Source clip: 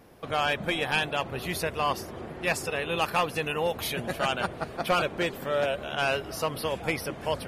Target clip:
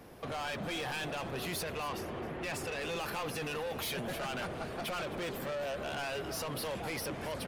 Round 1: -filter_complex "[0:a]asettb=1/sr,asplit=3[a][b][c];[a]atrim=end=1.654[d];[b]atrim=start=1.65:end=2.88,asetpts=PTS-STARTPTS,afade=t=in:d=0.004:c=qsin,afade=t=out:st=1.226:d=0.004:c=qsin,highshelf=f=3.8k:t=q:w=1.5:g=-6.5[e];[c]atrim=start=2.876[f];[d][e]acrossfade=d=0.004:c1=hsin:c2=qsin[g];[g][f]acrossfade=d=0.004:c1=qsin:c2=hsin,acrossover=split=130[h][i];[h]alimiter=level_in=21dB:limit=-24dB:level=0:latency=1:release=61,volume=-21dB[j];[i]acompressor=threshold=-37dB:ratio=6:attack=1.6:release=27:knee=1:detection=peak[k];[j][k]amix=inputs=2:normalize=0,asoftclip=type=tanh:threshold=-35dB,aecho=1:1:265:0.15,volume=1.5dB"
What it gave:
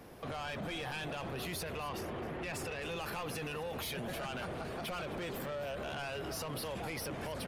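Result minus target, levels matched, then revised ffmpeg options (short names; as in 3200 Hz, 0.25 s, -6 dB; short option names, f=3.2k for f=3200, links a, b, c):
compressor: peak gain reduction +6 dB
-filter_complex "[0:a]asettb=1/sr,asplit=3[a][b][c];[a]atrim=end=1.654[d];[b]atrim=start=1.65:end=2.88,asetpts=PTS-STARTPTS,afade=t=in:d=0.004:c=qsin,afade=t=out:st=1.226:d=0.004:c=qsin,highshelf=f=3.8k:t=q:w=1.5:g=-6.5[e];[c]atrim=start=2.876[f];[d][e]acrossfade=d=0.004:c1=hsin:c2=qsin[g];[g][f]acrossfade=d=0.004:c1=qsin:c2=hsin,acrossover=split=130[h][i];[h]alimiter=level_in=21dB:limit=-24dB:level=0:latency=1:release=61,volume=-21dB[j];[i]acompressor=threshold=-29.5dB:ratio=6:attack=1.6:release=27:knee=1:detection=peak[k];[j][k]amix=inputs=2:normalize=0,asoftclip=type=tanh:threshold=-35dB,aecho=1:1:265:0.15,volume=1.5dB"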